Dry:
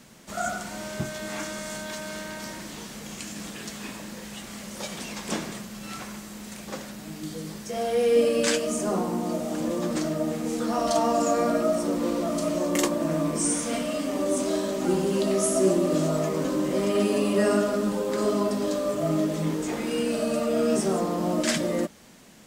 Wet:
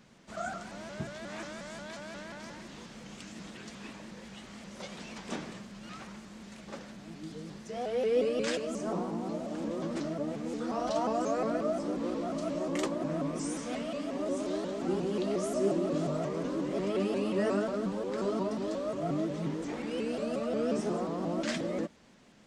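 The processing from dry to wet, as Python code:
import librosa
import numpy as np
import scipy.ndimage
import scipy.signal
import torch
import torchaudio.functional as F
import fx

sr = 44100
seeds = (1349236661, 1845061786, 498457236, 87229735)

y = fx.air_absorb(x, sr, metres=85.0)
y = fx.vibrato_shape(y, sr, shape='saw_up', rate_hz=5.6, depth_cents=160.0)
y = y * librosa.db_to_amplitude(-7.0)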